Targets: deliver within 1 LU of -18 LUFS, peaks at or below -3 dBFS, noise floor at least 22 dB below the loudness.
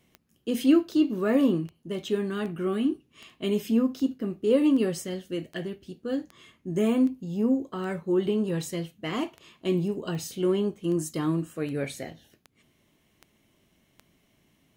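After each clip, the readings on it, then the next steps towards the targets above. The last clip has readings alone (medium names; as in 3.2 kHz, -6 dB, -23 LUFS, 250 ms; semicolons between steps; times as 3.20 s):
clicks found 20; loudness -27.5 LUFS; peak level -10.5 dBFS; loudness target -18.0 LUFS
-> de-click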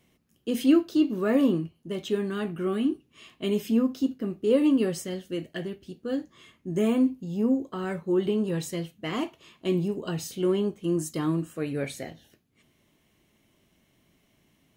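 clicks found 1; loudness -27.5 LUFS; peak level -10.5 dBFS; loudness target -18.0 LUFS
-> trim +9.5 dB; peak limiter -3 dBFS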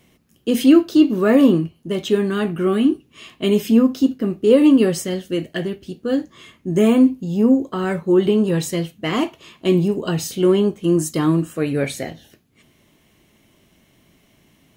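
loudness -18.0 LUFS; peak level -3.0 dBFS; noise floor -58 dBFS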